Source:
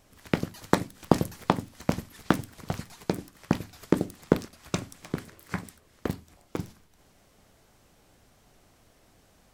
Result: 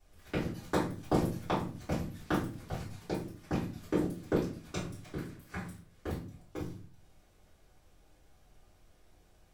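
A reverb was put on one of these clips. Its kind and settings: shoebox room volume 33 m³, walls mixed, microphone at 2.5 m; gain -19.5 dB

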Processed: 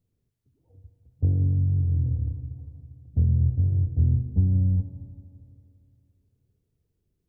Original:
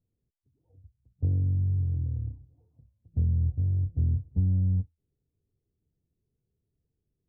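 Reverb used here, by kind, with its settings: spring tank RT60 2.7 s, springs 40/57 ms, chirp 65 ms, DRR 7 dB; gain +4.5 dB

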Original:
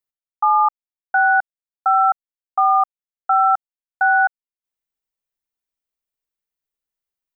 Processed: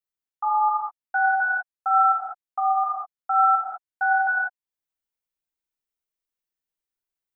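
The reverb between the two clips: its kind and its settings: non-linear reverb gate 0.23 s flat, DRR -6 dB; gain -9.5 dB

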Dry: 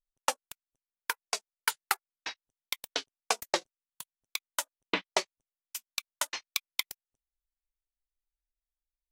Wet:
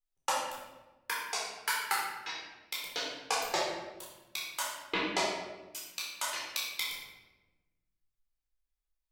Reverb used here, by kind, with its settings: shoebox room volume 600 m³, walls mixed, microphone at 4 m; gain -8.5 dB

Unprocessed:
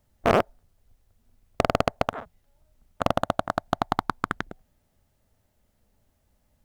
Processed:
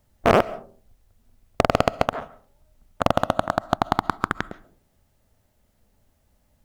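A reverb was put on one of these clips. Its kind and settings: digital reverb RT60 0.44 s, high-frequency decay 0.35×, pre-delay 95 ms, DRR 19 dB; gain +3.5 dB

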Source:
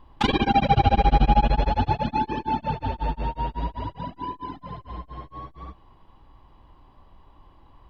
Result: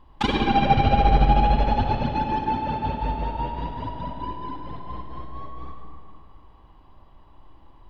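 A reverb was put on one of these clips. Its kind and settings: digital reverb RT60 2.5 s, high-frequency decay 0.6×, pre-delay 20 ms, DRR 2 dB; gain -1.5 dB

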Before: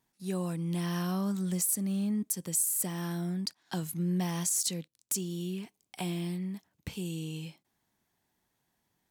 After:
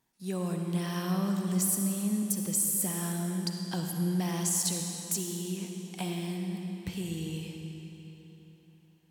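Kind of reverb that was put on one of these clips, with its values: digital reverb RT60 3.6 s, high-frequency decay 0.9×, pre-delay 20 ms, DRR 2.5 dB

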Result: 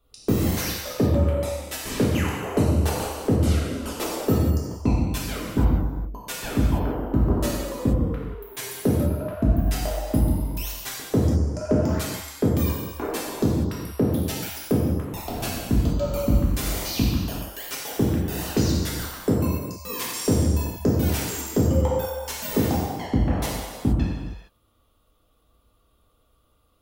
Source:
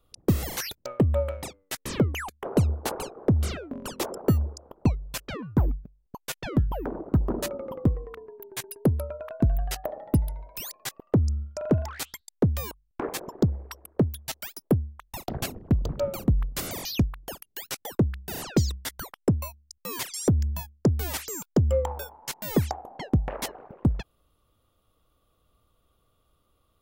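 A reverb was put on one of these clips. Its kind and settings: non-linear reverb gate 0.49 s falling, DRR -6 dB; gain -2.5 dB

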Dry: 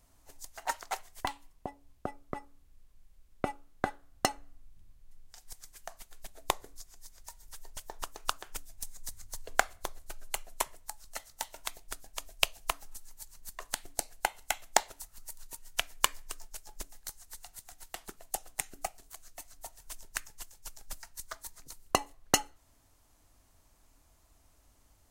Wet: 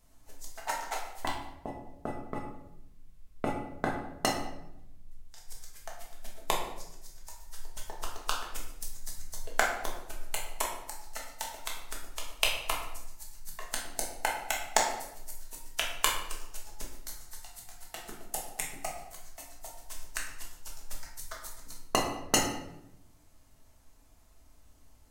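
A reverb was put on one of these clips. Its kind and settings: shoebox room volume 260 m³, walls mixed, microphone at 1.5 m; gain -2.5 dB

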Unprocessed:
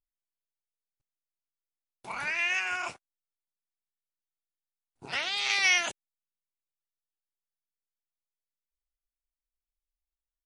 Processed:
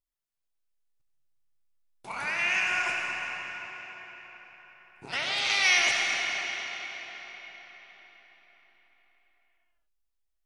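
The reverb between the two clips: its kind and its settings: digital reverb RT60 4.9 s, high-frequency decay 0.8×, pre-delay 30 ms, DRR -1.5 dB

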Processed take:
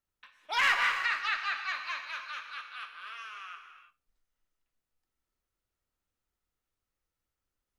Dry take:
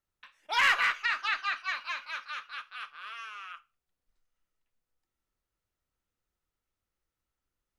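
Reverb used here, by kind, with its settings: non-linear reverb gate 0.36 s flat, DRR 5.5 dB; gain -2 dB

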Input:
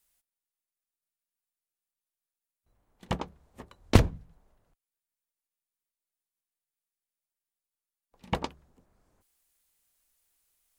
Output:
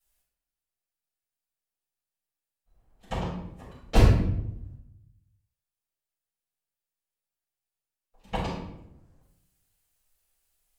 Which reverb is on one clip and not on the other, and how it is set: shoebox room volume 210 m³, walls mixed, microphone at 6.3 m; gain -15 dB

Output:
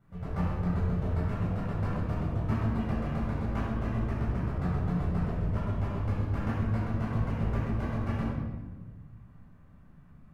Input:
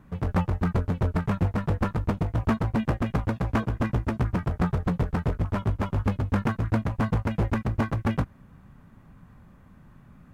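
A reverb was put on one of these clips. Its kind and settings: shoebox room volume 1000 m³, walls mixed, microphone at 7.1 m; gain -19 dB

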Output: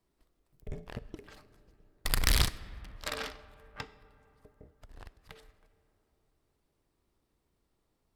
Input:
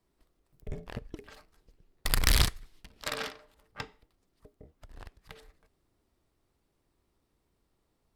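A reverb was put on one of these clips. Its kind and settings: digital reverb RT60 3.7 s, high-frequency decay 0.35×, pre-delay 20 ms, DRR 16.5 dB; gain -2 dB

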